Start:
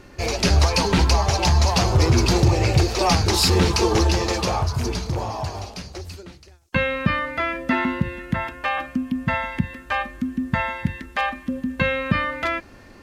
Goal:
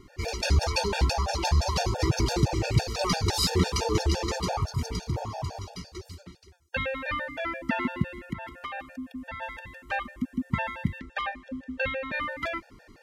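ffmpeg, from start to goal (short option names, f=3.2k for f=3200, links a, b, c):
-filter_complex "[0:a]asettb=1/sr,asplit=3[a][b][c];[a]atrim=end=8.184[d];[b]atrim=start=8.18:end=9.42,asetpts=PTS-STARTPTS,afade=t=in:d=0.004:c=qsin,afade=t=out:st=1.236:d=0.004:c=qsin,acompressor=threshold=-25dB:ratio=10[e];[c]atrim=start=9.416[f];[d][e]acrossfade=d=0.004:c1=hsin:c2=qsin[g];[g][f]acrossfade=d=0.004:c1=qsin:c2=hsin,asettb=1/sr,asplit=3[h][i][j];[h]atrim=end=10.994[k];[i]atrim=start=10.99:end=12.12,asetpts=PTS-STARTPTS,afade=t=in:d=0.004:c=qsin,afade=t=out:st=1.126:d=0.004:c=qsin,lowpass=5.5k[l];[j]atrim=start=12.116[m];[k][l]acrossfade=d=0.004:c1=hsin:c2=qsin[n];[n][m]acrossfade=d=0.004:c1=qsin:c2=hsin,afftfilt=real='re*gt(sin(2*PI*5.9*pts/sr)*(1-2*mod(floor(b*sr/1024/470),2)),0)':imag='im*gt(sin(2*PI*5.9*pts/sr)*(1-2*mod(floor(b*sr/1024/470),2)),0)':win_size=1024:overlap=0.75,volume=-4dB"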